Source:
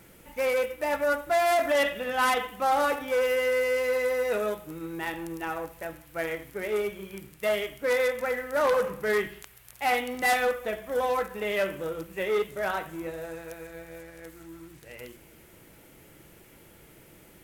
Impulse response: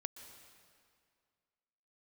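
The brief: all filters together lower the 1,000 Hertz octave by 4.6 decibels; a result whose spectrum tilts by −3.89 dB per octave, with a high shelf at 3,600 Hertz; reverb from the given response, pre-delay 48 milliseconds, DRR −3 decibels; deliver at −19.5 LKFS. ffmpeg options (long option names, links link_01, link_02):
-filter_complex "[0:a]equalizer=frequency=1000:width_type=o:gain=-6.5,highshelf=frequency=3600:gain=-3.5,asplit=2[link_01][link_02];[1:a]atrim=start_sample=2205,adelay=48[link_03];[link_02][link_03]afir=irnorm=-1:irlink=0,volume=5.5dB[link_04];[link_01][link_04]amix=inputs=2:normalize=0,volume=6dB"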